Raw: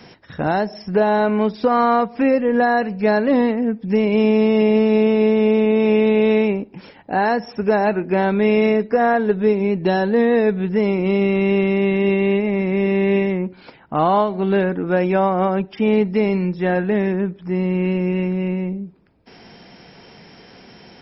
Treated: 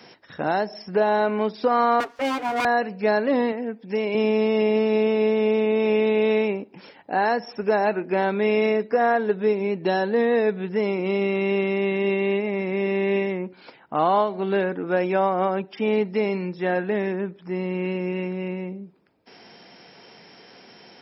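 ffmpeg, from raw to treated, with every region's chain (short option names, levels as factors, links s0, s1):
-filter_complex "[0:a]asettb=1/sr,asplit=3[s0][s1][s2];[s0]atrim=end=2.004[s3];[s1]atrim=start=2:end=2.65,asetpts=PTS-STARTPTS,afade=t=in:d=0.004:c=qsin,afade=t=out:st=0.646:d=0.004:c=qsin,agate=range=0.0224:threshold=0.02:ratio=3:release=100:detection=peak,aeval=exprs='abs(val(0))':c=same,aecho=1:1:7:0.5,atrim=end_sample=28665[s4];[s2]atrim=start=2.646[s5];[s3][s4]acrossfade=d=0.004:c1=hsin:c2=qsin[s6];[s6][s5]acrossfade=d=0.004:c1=qsin:c2=hsin,asettb=1/sr,asplit=3[s7][s8][s9];[s7]atrim=end=3.524[s10];[s8]atrim=start=3.52:end=4.15,asetpts=PTS-STARTPTS,afade=t=in:d=0.004:c=qsin,afade=t=out:st=0.626:d=0.004:c=qsin,highpass=f=280:p=1,bandreject=f=1200:w=12[s11];[s9]atrim=start=4.146[s12];[s10][s11]acrossfade=d=0.004:c1=hsin:c2=qsin[s13];[s13][s12]acrossfade=d=0.004:c1=qsin:c2=hsin,highpass=97,bass=f=250:g=-8,treble=f=4000:g=2,volume=0.708"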